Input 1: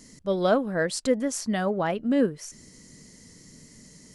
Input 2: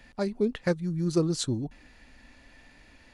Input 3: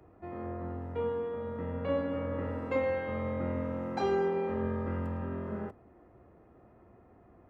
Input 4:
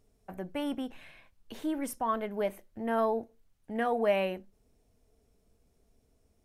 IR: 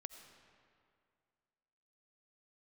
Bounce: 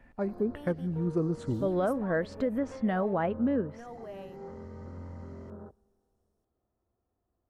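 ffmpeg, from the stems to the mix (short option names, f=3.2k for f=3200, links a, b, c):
-filter_complex "[0:a]adelay=1350,volume=-1dB[a];[1:a]volume=-3.5dB,asplit=2[b][c];[c]volume=-11dB[d];[2:a]afwtdn=0.01,asubboost=boost=2.5:cutoff=82,volume=-8dB,asplit=2[e][f];[f]volume=-14.5dB[g];[3:a]volume=-12dB,asplit=2[h][i];[i]apad=whole_len=330545[j];[e][j]sidechaincompress=threshold=-51dB:ratio=8:attack=6.7:release=163[k];[k][h]amix=inputs=2:normalize=0,equalizer=f=2.3k:t=o:w=0.44:g=-12.5,alimiter=level_in=12dB:limit=-24dB:level=0:latency=1:release=253,volume=-12dB,volume=0dB[l];[a][b]amix=inputs=2:normalize=0,lowpass=1.7k,alimiter=limit=-20.5dB:level=0:latency=1:release=83,volume=0dB[m];[4:a]atrim=start_sample=2205[n];[d][g]amix=inputs=2:normalize=0[o];[o][n]afir=irnorm=-1:irlink=0[p];[l][m][p]amix=inputs=3:normalize=0"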